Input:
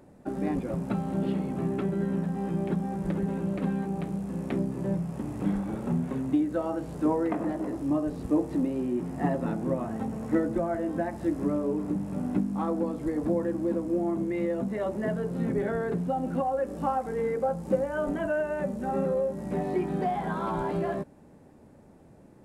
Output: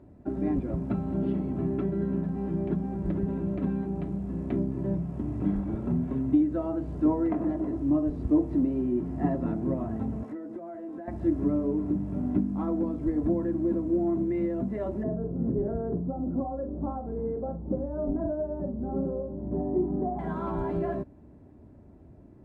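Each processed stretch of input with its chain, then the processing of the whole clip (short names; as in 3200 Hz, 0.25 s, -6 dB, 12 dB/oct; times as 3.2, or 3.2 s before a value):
10.23–11.08 HPF 310 Hz + compressor, threshold -36 dBFS
15.03–20.19 Bessel low-pass 740 Hz, order 4 + doubler 44 ms -9 dB
whole clip: HPF 60 Hz; RIAA curve playback; comb 3 ms, depth 43%; gain -5.5 dB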